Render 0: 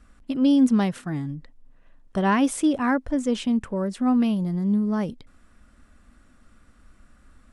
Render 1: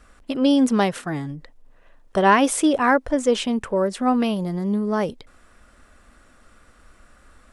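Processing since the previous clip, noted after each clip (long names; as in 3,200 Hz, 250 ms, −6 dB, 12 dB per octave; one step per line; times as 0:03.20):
low shelf with overshoot 330 Hz −6.5 dB, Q 1.5
level +7 dB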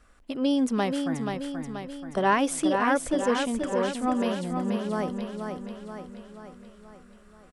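repeating echo 481 ms, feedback 55%, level −5.5 dB
level −7 dB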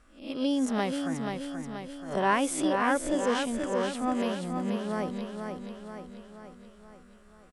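peak hold with a rise ahead of every peak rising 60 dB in 0.40 s
level −3.5 dB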